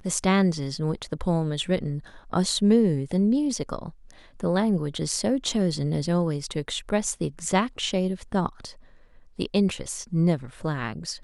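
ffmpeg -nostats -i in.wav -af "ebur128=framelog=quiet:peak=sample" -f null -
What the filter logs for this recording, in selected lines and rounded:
Integrated loudness:
  I:         -25.6 LUFS
  Threshold: -36.0 LUFS
Loudness range:
  LRA:         3.5 LU
  Threshold: -46.0 LUFS
  LRA low:   -28.0 LUFS
  LRA high:  -24.5 LUFS
Sample peak:
  Peak:       -7.6 dBFS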